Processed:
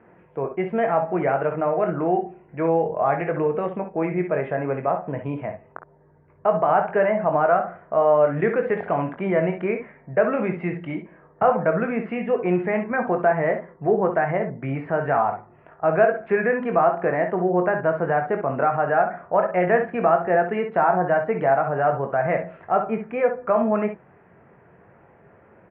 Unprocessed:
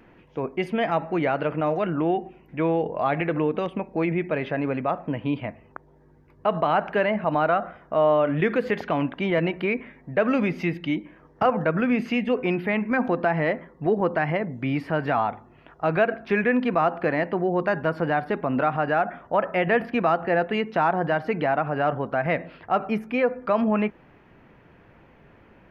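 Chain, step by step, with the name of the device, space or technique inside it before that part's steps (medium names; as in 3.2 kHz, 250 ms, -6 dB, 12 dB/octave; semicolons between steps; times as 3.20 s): bass cabinet (cabinet simulation 87–2000 Hz, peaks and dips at 270 Hz -8 dB, 420 Hz +3 dB, 670 Hz +4 dB); early reflections 22 ms -8 dB, 56 ms -11.5 dB, 67 ms -10 dB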